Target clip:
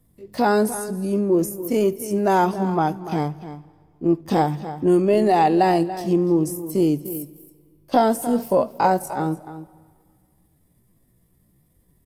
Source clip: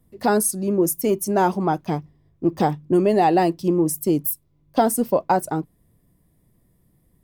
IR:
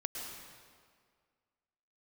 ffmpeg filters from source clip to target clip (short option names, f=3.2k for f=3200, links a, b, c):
-filter_complex "[0:a]acrossover=split=2700[a][b];[b]acompressor=threshold=-33dB:ratio=4:attack=1:release=60[c];[a][c]amix=inputs=2:normalize=0,highshelf=f=3.6k:g=4,asplit=2[d][e];[e]adelay=174.9,volume=-13dB,highshelf=f=4k:g=-3.94[f];[d][f]amix=inputs=2:normalize=0,atempo=0.6,asplit=2[g][h];[1:a]atrim=start_sample=2205,adelay=75[i];[h][i]afir=irnorm=-1:irlink=0,volume=-21.5dB[j];[g][j]amix=inputs=2:normalize=0" -ar 32000 -c:a aac -b:a 64k